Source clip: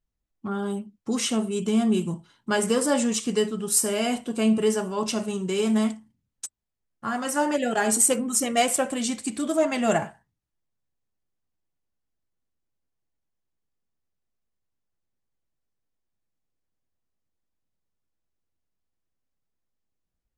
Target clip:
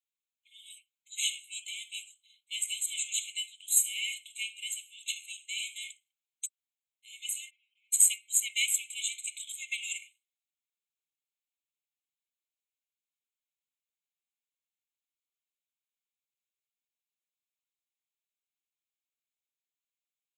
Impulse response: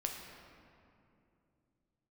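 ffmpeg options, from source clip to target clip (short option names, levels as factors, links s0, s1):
-filter_complex "[0:a]asplit=3[s0][s1][s2];[s0]afade=t=out:st=7.49:d=0.02[s3];[s1]lowpass=f=400:t=q:w=4.9,afade=t=in:st=7.49:d=0.02,afade=t=out:st=7.92:d=0.02[s4];[s2]afade=t=in:st=7.92:d=0.02[s5];[s3][s4][s5]amix=inputs=3:normalize=0,afftfilt=real='re*eq(mod(floor(b*sr/1024/2100),2),1)':imag='im*eq(mod(floor(b*sr/1024/2100),2),1)':win_size=1024:overlap=0.75"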